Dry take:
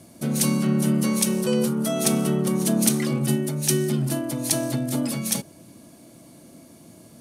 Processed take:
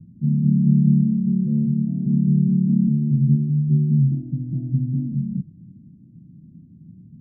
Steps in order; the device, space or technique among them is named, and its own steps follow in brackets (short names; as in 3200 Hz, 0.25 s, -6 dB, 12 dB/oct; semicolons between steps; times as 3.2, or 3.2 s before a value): the neighbour's flat through the wall (LPF 190 Hz 24 dB/oct; bell 170 Hz +5 dB 0.61 oct); gain +6.5 dB